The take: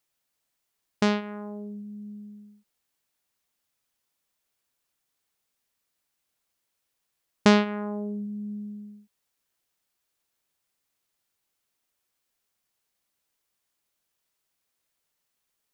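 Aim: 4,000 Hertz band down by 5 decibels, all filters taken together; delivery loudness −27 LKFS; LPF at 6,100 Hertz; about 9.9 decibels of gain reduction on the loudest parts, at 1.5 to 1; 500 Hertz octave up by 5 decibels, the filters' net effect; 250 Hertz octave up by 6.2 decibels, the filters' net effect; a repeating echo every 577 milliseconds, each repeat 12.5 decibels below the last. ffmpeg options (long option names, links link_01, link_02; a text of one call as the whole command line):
ffmpeg -i in.wav -af "lowpass=6100,equalizer=frequency=250:width_type=o:gain=7.5,equalizer=frequency=500:width_type=o:gain=4,equalizer=frequency=4000:width_type=o:gain=-6,acompressor=threshold=-36dB:ratio=1.5,aecho=1:1:577|1154|1731:0.237|0.0569|0.0137,volume=5dB" out.wav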